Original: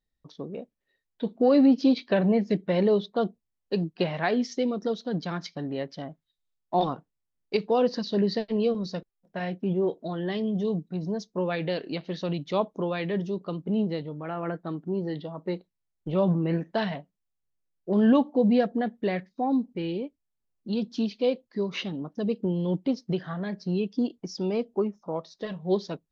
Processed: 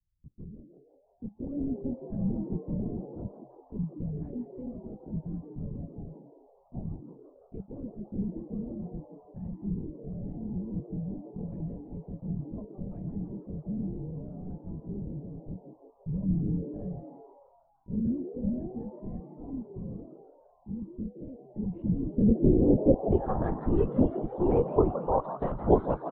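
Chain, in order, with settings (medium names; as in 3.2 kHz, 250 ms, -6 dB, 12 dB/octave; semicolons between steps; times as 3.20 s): low-pass sweep 110 Hz -> 910 Hz, 21.41–23.40 s; LPC vocoder at 8 kHz whisper; frequency-shifting echo 167 ms, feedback 52%, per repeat +130 Hz, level -11.5 dB; trim +1.5 dB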